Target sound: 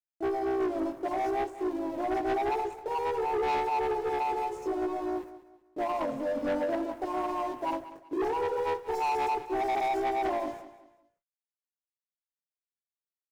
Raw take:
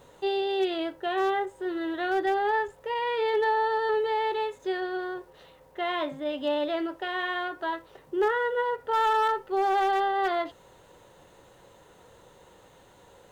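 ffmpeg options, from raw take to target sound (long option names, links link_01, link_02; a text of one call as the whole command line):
ffmpeg -i in.wav -filter_complex "[0:a]afftfilt=real='re*(1-between(b*sr/4096,1100,5000))':imag='im*(1-between(b*sr/4096,1100,5000))':win_size=4096:overlap=0.75,agate=range=-54dB:threshold=-47dB:ratio=16:detection=peak,equalizer=frequency=440:width=4.4:gain=-2,bandreject=frequency=86.17:width_type=h:width=4,bandreject=frequency=172.34:width_type=h:width=4,bandreject=frequency=258.51:width_type=h:width=4,bandreject=frequency=344.68:width_type=h:width=4,bandreject=frequency=430.85:width_type=h:width=4,bandreject=frequency=517.02:width_type=h:width=4,bandreject=frequency=603.19:width_type=h:width=4,bandreject=frequency=689.36:width_type=h:width=4,asplit=2[link_01][link_02];[link_02]acompressor=threshold=-37dB:ratio=4,volume=3dB[link_03];[link_01][link_03]amix=inputs=2:normalize=0,aeval=exprs='sgn(val(0))*max(abs(val(0))-0.00473,0)':channel_layout=same,flanger=delay=16:depth=6.1:speed=0.56,asplit=2[link_04][link_05];[link_05]asetrate=37084,aresample=44100,atempo=1.18921,volume=-6dB[link_06];[link_04][link_06]amix=inputs=2:normalize=0,asoftclip=type=tanh:threshold=-28dB,aecho=1:1:190|380|570:0.178|0.0605|0.0206,volume=2.5dB" out.wav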